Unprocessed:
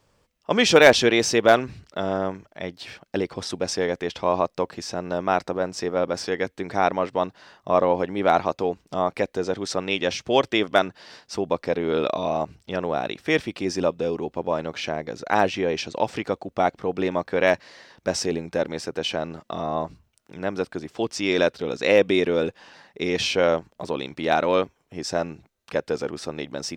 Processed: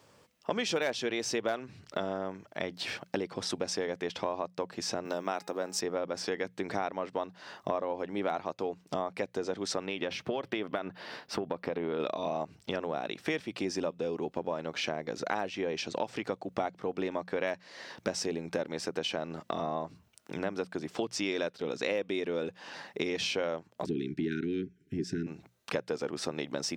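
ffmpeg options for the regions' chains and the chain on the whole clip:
-filter_complex "[0:a]asettb=1/sr,asplit=3[a][b][c];[a]atrim=end=5.054[d];[b]atrim=start=5.05:end=5.81,asetpts=PTS-STARTPTS,afade=t=in:d=0.004:c=qsin,afade=t=out:st=0.756:d=0.004:c=qsin,highpass=160,aemphasis=mode=production:type=50fm,bandreject=f=416.4:t=h:w=4,bandreject=f=832.8:t=h:w=4,bandreject=f=1.2492k:t=h:w=4,bandreject=f=1.6656k:t=h:w=4,bandreject=f=2.082k:t=h:w=4,bandreject=f=2.4984k:t=h:w=4,bandreject=f=2.9148k:t=h:w=4,bandreject=f=3.3312k:t=h:w=4,bandreject=f=3.7476k:t=h:w=4[e];[c]atrim=start=5.806[f];[d][e]acrossfade=d=0.004:c1=hsin:c2=qsin[g];[g][f]acrossfade=d=0.004:c1=qsin:c2=hsin,asettb=1/sr,asplit=3[h][i][j];[h]atrim=end=9.864[k];[i]atrim=start=9.86:end=12,asetpts=PTS-STARTPTS,afade=t=in:d=0.004:c=qsin,afade=t=out:st=2.136:d=0.004:c=qsin,equalizer=f=6.9k:t=o:w=1.3:g=-13,acompressor=threshold=-23dB:ratio=4:attack=3.2:release=140:knee=1:detection=peak[l];[j]atrim=start=11.996[m];[k][l]acrossfade=d=0.004:c1=hsin:c2=qsin[n];[n][m]acrossfade=d=0.004:c1=qsin:c2=hsin,asettb=1/sr,asplit=3[o][p][q];[o]atrim=end=23.864[r];[p]atrim=start=23.86:end=25.27,asetpts=PTS-STARTPTS,afade=t=in:d=0.004:c=qsin,afade=t=out:st=1.406:d=0.004:c=qsin,asuperstop=centerf=780:order=20:qfactor=0.74,tiltshelf=f=1.1k:g=9[s];[q]atrim=start=25.266[t];[r][s]acrossfade=d=0.004:c1=hsin:c2=qsin[u];[u][t]acrossfade=d=0.004:c1=qsin:c2=hsin,acompressor=threshold=-35dB:ratio=6,highpass=120,bandreject=f=60:t=h:w=6,bandreject=f=120:t=h:w=6,bandreject=f=180:t=h:w=6,volume=4.5dB"

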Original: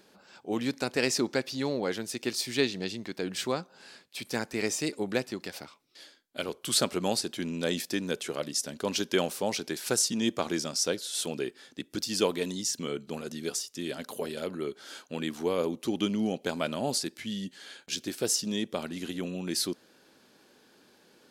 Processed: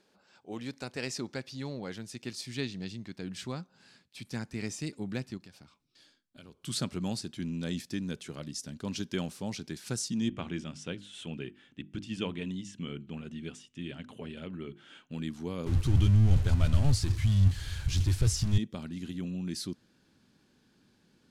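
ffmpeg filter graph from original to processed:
-filter_complex "[0:a]asettb=1/sr,asplit=3[a][b][c];[a]atrim=end=5.374[d];[b]atrim=start=5.37:end=6.63,asetpts=PTS-STARTPTS,afade=t=in:d=0.004:c=qsin,afade=t=out:st=1.256:d=0.004:c=qsin,bandreject=f=2k:w=9.9,acompressor=threshold=-48dB:ratio=2:attack=3.2:release=140:knee=1:detection=peak[e];[c]atrim=start=6.626[f];[d][e]acrossfade=d=0.004:c1=hsin:c2=qsin[g];[g][f]acrossfade=d=0.004:c1=qsin:c2=hsin,asettb=1/sr,asplit=3[h][i][j];[h]atrim=end=10.284[k];[i]atrim=start=10.28:end=15.11,asetpts=PTS-STARTPTS,afade=t=in:d=0.004:c=qsin,afade=t=out:st=4.826:d=0.004:c=qsin,lowpass=f=9.6k:w=0.5412,lowpass=f=9.6k:w=1.3066,highshelf=f=3.7k:t=q:w=3:g=-7.5,bandreject=f=50:t=h:w=6,bandreject=f=100:t=h:w=6,bandreject=f=150:t=h:w=6,bandreject=f=200:t=h:w=6,bandreject=f=250:t=h:w=6,bandreject=f=300:t=h:w=6,bandreject=f=350:t=h:w=6[l];[j]atrim=start=15.106[m];[k][l]acrossfade=d=0.004:c1=hsin:c2=qsin[n];[n][m]acrossfade=d=0.004:c1=qsin:c2=hsin,asettb=1/sr,asplit=3[o][p][q];[o]atrim=end=15.664[r];[p]atrim=start=15.66:end=18.58,asetpts=PTS-STARTPTS,afade=t=in:d=0.004:c=qsin,afade=t=out:st=2.916:d=0.004:c=qsin,aeval=exprs='val(0)+0.5*0.0398*sgn(val(0))':c=same,agate=range=-33dB:threshold=-31dB:ratio=3:release=100:detection=peak,lowshelf=f=140:t=q:w=3:g=13.5[s];[q]atrim=start=18.576[t];[r][s]acrossfade=d=0.004:c1=hsin:c2=qsin[u];[u][t]acrossfade=d=0.004:c1=qsin:c2=hsin,asubboost=boost=8:cutoff=170,lowpass=10k,volume=-8.5dB"

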